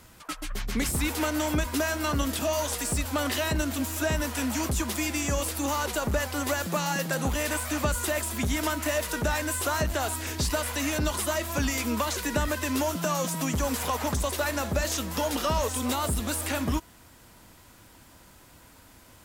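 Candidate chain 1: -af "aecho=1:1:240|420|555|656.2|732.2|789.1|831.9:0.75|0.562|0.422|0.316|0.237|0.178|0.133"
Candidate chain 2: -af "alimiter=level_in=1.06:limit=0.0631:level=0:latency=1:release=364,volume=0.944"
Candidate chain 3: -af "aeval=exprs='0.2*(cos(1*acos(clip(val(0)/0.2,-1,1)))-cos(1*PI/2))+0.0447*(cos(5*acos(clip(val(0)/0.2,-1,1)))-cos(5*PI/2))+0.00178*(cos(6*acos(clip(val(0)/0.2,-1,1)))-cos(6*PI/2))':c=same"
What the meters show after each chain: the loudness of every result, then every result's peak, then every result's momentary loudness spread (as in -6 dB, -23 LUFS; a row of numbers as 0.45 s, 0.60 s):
-24.5 LUFS, -34.0 LUFS, -23.5 LUFS; -10.0 dBFS, -24.5 dBFS, -14.0 dBFS; 2 LU, 19 LU, 1 LU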